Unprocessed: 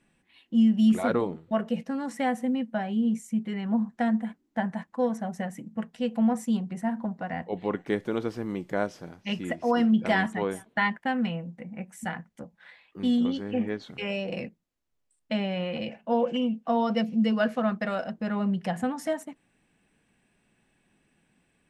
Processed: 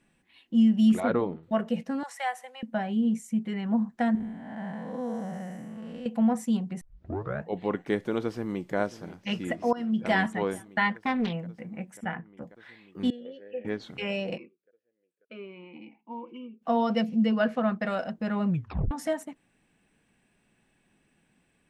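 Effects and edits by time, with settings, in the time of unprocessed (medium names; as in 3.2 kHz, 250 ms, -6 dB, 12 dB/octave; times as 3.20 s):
1.00–1.43 s: distance through air 170 m
2.03–2.63 s: inverse Chebyshev high-pass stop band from 330 Hz
4.15–6.06 s: spectral blur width 293 ms
6.81 s: tape start 0.68 s
8.24–8.76 s: echo throw 540 ms, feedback 85%, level -15.5 dB
9.73–10.16 s: fade in, from -17.5 dB
10.92–11.33 s: loudspeaker Doppler distortion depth 0.51 ms
11.97–12.42 s: Savitzky-Golay filter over 25 samples
13.10–13.65 s: vowel filter e
14.36–16.61 s: talking filter e-u 0.74 Hz -> 0.32 Hz
17.23–17.85 s: low-pass 3.9 kHz 6 dB/octave
18.48 s: tape stop 0.43 s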